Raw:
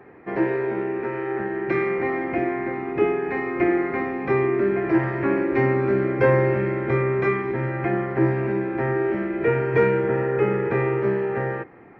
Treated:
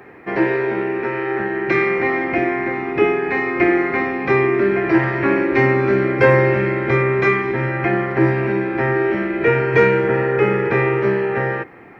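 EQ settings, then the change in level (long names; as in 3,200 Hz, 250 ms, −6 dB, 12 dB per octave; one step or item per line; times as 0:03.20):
high-shelf EQ 2,200 Hz +12 dB
+4.0 dB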